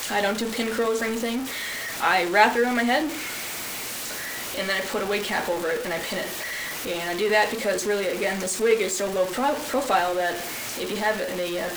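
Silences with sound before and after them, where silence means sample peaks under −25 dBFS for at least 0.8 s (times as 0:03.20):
0:03.08–0:04.06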